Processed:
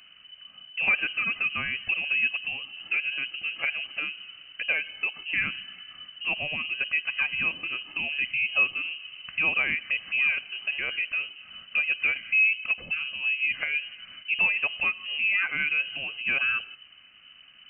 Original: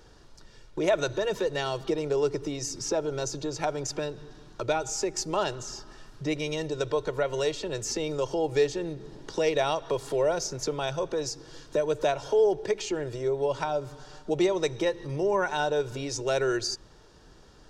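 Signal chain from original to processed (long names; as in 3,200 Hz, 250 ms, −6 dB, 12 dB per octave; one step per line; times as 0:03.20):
0:12.00–0:13.52: dynamic equaliser 2,100 Hz, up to −7 dB, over −50 dBFS, Q 2.1
voice inversion scrambler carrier 3,000 Hz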